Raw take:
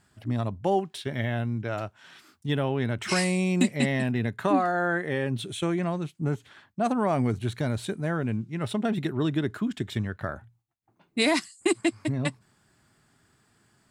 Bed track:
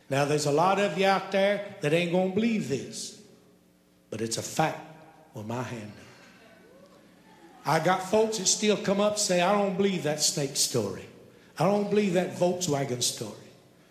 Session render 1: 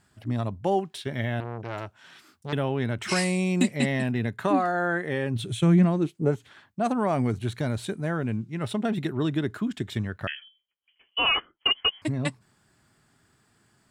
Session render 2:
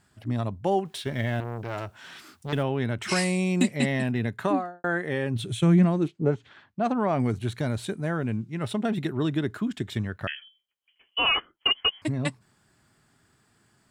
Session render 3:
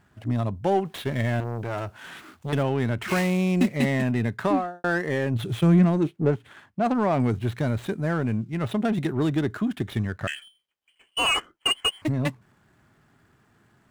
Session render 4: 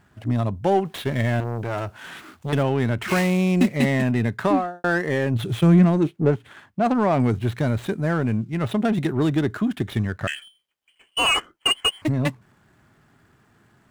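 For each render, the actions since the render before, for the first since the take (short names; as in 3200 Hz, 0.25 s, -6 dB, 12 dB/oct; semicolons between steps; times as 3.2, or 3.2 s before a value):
1.4–2.53 core saturation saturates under 1300 Hz; 5.34–6.3 bell 79 Hz -> 520 Hz +14.5 dB; 10.27–12.02 inverted band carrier 3200 Hz
0.85–2.63 G.711 law mismatch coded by mu; 4.42–4.84 studio fade out; 6.08–7.2 LPF 4600 Hz
median filter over 9 samples; in parallel at -3 dB: soft clip -29 dBFS, distortion -6 dB
gain +3 dB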